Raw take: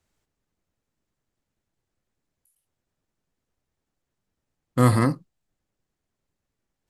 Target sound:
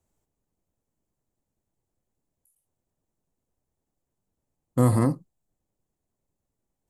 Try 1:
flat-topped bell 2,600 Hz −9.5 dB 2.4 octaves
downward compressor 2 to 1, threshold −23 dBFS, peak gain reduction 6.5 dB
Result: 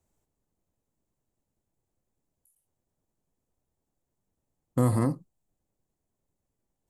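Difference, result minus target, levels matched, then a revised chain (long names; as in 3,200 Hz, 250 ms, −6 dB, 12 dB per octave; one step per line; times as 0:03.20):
downward compressor: peak gain reduction +4 dB
flat-topped bell 2,600 Hz −9.5 dB 2.4 octaves
downward compressor 2 to 1, threshold −15 dBFS, peak gain reduction 2.5 dB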